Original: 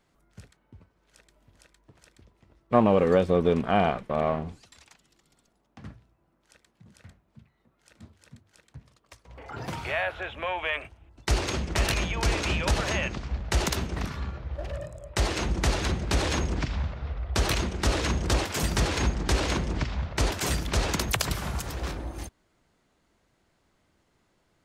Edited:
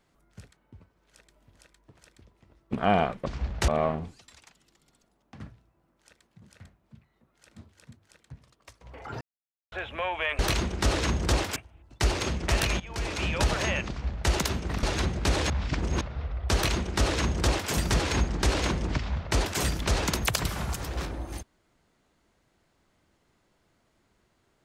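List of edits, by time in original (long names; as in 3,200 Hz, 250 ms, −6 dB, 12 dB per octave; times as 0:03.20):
0:02.73–0:03.59: remove
0:09.65–0:10.16: silence
0:12.07–0:12.66: fade in, from −16 dB
0:13.16–0:13.58: duplicate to 0:04.12
0:14.10–0:15.69: remove
0:16.36–0:16.87: reverse
0:17.40–0:18.57: duplicate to 0:10.83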